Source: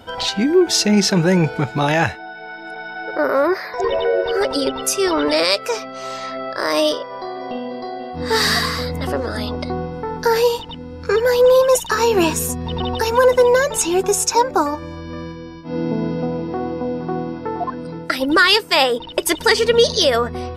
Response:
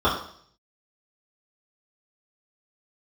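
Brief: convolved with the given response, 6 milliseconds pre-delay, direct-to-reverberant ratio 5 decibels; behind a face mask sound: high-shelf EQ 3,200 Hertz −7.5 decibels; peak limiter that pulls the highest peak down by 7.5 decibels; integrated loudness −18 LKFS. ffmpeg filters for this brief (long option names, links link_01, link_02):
-filter_complex "[0:a]alimiter=limit=-9.5dB:level=0:latency=1,asplit=2[link_01][link_02];[1:a]atrim=start_sample=2205,adelay=6[link_03];[link_02][link_03]afir=irnorm=-1:irlink=0,volume=-24dB[link_04];[link_01][link_04]amix=inputs=2:normalize=0,highshelf=frequency=3200:gain=-7.5,volume=2dB"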